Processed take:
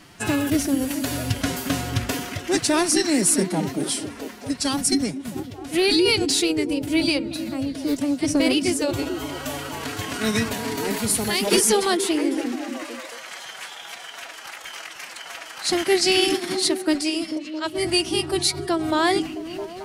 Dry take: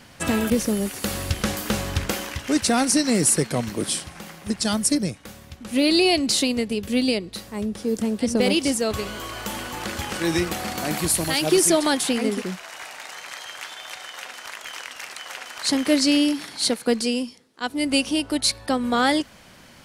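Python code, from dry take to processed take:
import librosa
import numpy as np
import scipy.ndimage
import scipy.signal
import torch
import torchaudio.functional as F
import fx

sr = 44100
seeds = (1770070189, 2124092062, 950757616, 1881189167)

y = fx.echo_stepped(x, sr, ms=221, hz=180.0, octaves=0.7, feedback_pct=70, wet_db=-5)
y = fx.pitch_keep_formants(y, sr, semitones=4.5)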